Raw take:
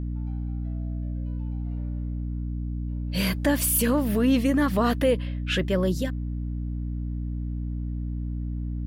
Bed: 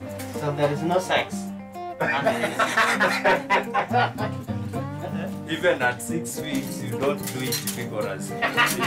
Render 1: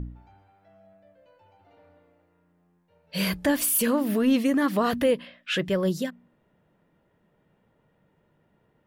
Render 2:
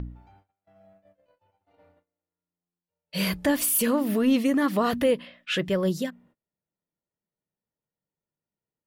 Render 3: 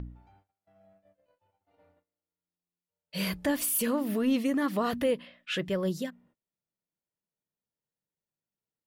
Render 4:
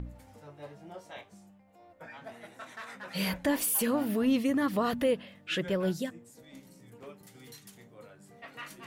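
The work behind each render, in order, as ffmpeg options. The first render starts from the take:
-af "bandreject=f=60:t=h:w=4,bandreject=f=120:t=h:w=4,bandreject=f=180:t=h:w=4,bandreject=f=240:t=h:w=4,bandreject=f=300:t=h:w=4"
-af "agate=range=-27dB:threshold=-56dB:ratio=16:detection=peak,bandreject=f=1.6k:w=21"
-af "volume=-5dB"
-filter_complex "[1:a]volume=-24dB[a];[0:a][a]amix=inputs=2:normalize=0"

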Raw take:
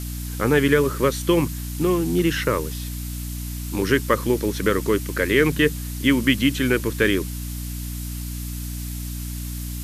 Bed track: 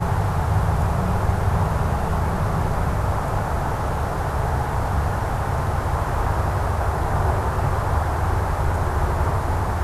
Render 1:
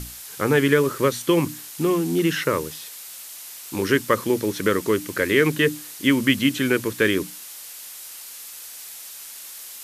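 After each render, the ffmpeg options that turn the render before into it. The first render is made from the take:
-af "bandreject=f=60:t=h:w=6,bandreject=f=120:t=h:w=6,bandreject=f=180:t=h:w=6,bandreject=f=240:t=h:w=6,bandreject=f=300:t=h:w=6"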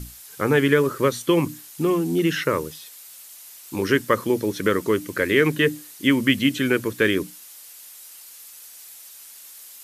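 -af "afftdn=nr=7:nf=-39"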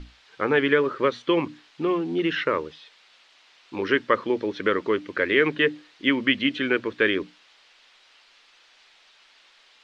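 -af "lowpass=f=3.8k:w=0.5412,lowpass=f=3.8k:w=1.3066,equalizer=f=120:t=o:w=1.8:g=-12.5"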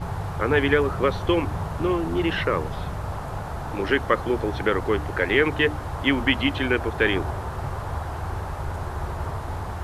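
-filter_complex "[1:a]volume=-8.5dB[a];[0:a][a]amix=inputs=2:normalize=0"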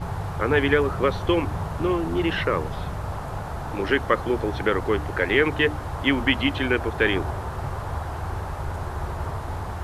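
-af anull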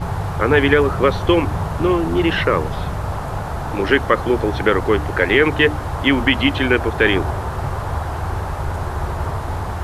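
-af "volume=6.5dB,alimiter=limit=-1dB:level=0:latency=1"

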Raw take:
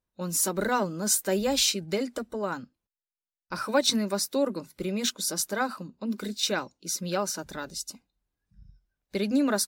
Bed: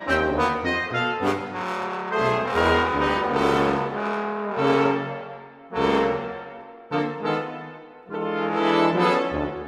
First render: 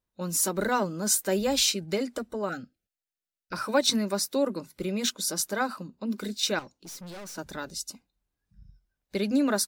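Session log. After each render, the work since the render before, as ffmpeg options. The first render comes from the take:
-filter_complex "[0:a]asettb=1/sr,asplit=3[a][b][c];[a]atrim=end=2.494[d];[b]atrim=start=2.49:end=3.53,asetpts=PTS-STARTPTS,afade=t=in:d=0.004:c=qsin,afade=t=out:st=1.036:d=0.004:c=qsin,asuperstop=centerf=1000:order=20:qfactor=2.2[e];[c]atrim=start=3.526[f];[d][e]acrossfade=d=0.004:c1=hsin:c2=qsin[g];[g][f]acrossfade=d=0.004:c1=qsin:c2=hsin,asettb=1/sr,asplit=3[h][i][j];[h]atrim=end=6.594[k];[i]atrim=start=6.59:end=7.38,asetpts=PTS-STARTPTS,afade=t=in:d=0.004:c=qsin,afade=t=out:st=0.786:d=0.004:c=qsin,aeval=exprs='(tanh(100*val(0)+0.2)-tanh(0.2))/100':c=same[l];[j]atrim=start=7.376[m];[k][l]acrossfade=d=0.004:c1=hsin:c2=qsin[n];[n][m]acrossfade=d=0.004:c1=qsin:c2=hsin"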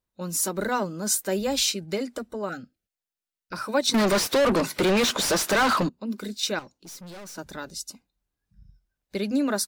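-filter_complex "[0:a]asettb=1/sr,asplit=3[a][b][c];[a]atrim=end=3.944[d];[b]atrim=start=3.94:end=5.89,asetpts=PTS-STARTPTS,afade=t=in:d=0.004:c=qsin,afade=t=out:st=1.946:d=0.004:c=qsin,asplit=2[e][f];[f]highpass=f=720:p=1,volume=36dB,asoftclip=type=tanh:threshold=-13.5dB[g];[e][g]amix=inputs=2:normalize=0,lowpass=f=3.2k:p=1,volume=-6dB[h];[c]atrim=start=5.886[i];[d][h]acrossfade=d=0.004:c1=hsin:c2=qsin[j];[j][i]acrossfade=d=0.004:c1=qsin:c2=hsin"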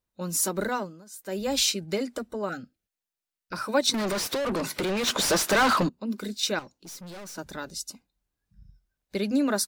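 -filter_complex "[0:a]asplit=3[a][b][c];[a]afade=t=out:st=3.91:d=0.02[d];[b]acompressor=threshold=-26dB:ratio=6:attack=3.2:release=140:knee=1:detection=peak,afade=t=in:st=3.91:d=0.02,afade=t=out:st=5.06:d=0.02[e];[c]afade=t=in:st=5.06:d=0.02[f];[d][e][f]amix=inputs=3:normalize=0,asplit=3[g][h][i];[g]atrim=end=1.05,asetpts=PTS-STARTPTS,afade=t=out:st=0.59:d=0.46:silence=0.0668344[j];[h]atrim=start=1.05:end=1.12,asetpts=PTS-STARTPTS,volume=-23.5dB[k];[i]atrim=start=1.12,asetpts=PTS-STARTPTS,afade=t=in:d=0.46:silence=0.0668344[l];[j][k][l]concat=n=3:v=0:a=1"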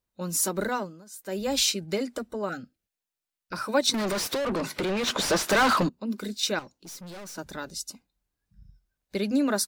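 -filter_complex "[0:a]asettb=1/sr,asplit=3[a][b][c];[a]atrim=end=4.454[d];[b]atrim=start=4.45:end=5.46,asetpts=PTS-STARTPTS,afade=t=in:d=0.004:c=qsin,afade=t=out:st=1.006:d=0.004:c=qsin,highshelf=f=6.8k:g=-7.5[e];[c]atrim=start=5.456[f];[d][e]acrossfade=d=0.004:c1=hsin:c2=qsin[g];[g][f]acrossfade=d=0.004:c1=qsin:c2=hsin"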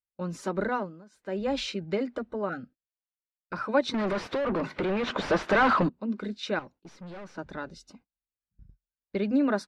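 -af "agate=range=-21dB:threshold=-51dB:ratio=16:detection=peak,lowpass=2.3k"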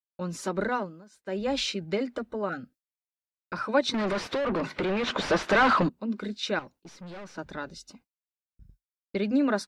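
-af "highshelf=f=3.1k:g=7.5,agate=range=-33dB:threshold=-54dB:ratio=3:detection=peak"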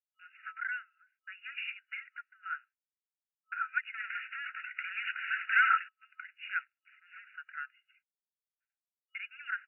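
-af "agate=range=-33dB:threshold=-48dB:ratio=3:detection=peak,afftfilt=real='re*between(b*sr/4096,1300,2900)':imag='im*between(b*sr/4096,1300,2900)':win_size=4096:overlap=0.75"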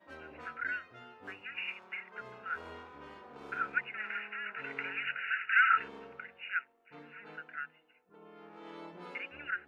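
-filter_complex "[1:a]volume=-28.5dB[a];[0:a][a]amix=inputs=2:normalize=0"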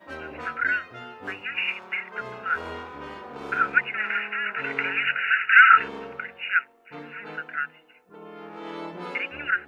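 -af "volume=12dB"

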